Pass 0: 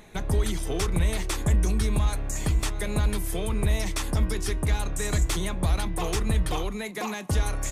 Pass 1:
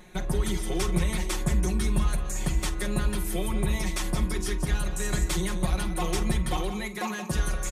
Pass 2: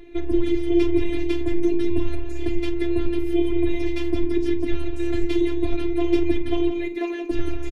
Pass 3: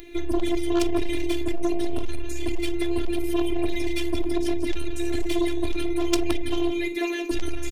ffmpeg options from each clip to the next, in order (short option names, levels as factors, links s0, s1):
-filter_complex "[0:a]aecho=1:1:5.5:0.89,asplit=2[s0][s1];[s1]aecho=0:1:49|176:0.178|0.316[s2];[s0][s2]amix=inputs=2:normalize=0,volume=0.668"
-af "afftfilt=real='hypot(re,im)*cos(PI*b)':imag='0':win_size=512:overlap=0.75,firequalizer=gain_entry='entry(110,0);entry(150,-17);entry(290,8);entry(460,1);entry(880,-15);entry(1300,-14);entry(2300,-3);entry(7700,-27)':delay=0.05:min_phase=1,volume=2.82"
-af "aeval=exprs='0.447*(cos(1*acos(clip(val(0)/0.447,-1,1)))-cos(1*PI/2))+0.1*(cos(3*acos(clip(val(0)/0.447,-1,1)))-cos(3*PI/2))+0.112*(cos(5*acos(clip(val(0)/0.447,-1,1)))-cos(5*PI/2))+0.0158*(cos(7*acos(clip(val(0)/0.447,-1,1)))-cos(7*PI/2))':c=same,crystalizer=i=5.5:c=0,volume=0.708"